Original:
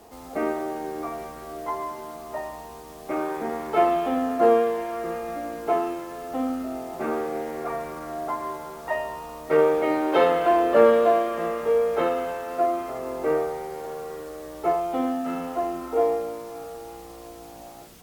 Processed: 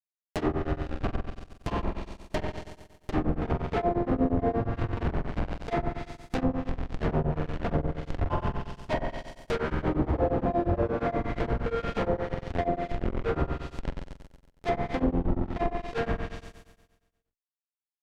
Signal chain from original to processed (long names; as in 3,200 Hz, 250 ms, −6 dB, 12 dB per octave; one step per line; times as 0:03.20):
resonant band-pass 670 Hz, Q 0.59
reverb reduction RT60 0.64 s
in parallel at +2.5 dB: downward compressor 6 to 1, threshold −35 dBFS, peak gain reduction 20.5 dB
on the sum: comparator with hysteresis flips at −23 dBFS
on a send: flutter between parallel walls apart 7.9 metres, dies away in 1.2 s
on the sum: treble cut that deepens with the level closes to 830 Hz, closed at −19 dBFS
tremolo along a rectified sine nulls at 8.5 Hz